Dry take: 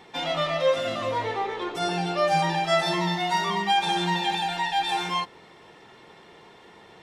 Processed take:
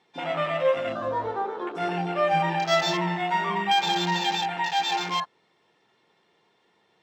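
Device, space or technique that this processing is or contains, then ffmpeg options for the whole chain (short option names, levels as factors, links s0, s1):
over-cleaned archive recording: -af "highpass=110,lowpass=5400,afwtdn=0.0251,aemphasis=mode=production:type=50fm"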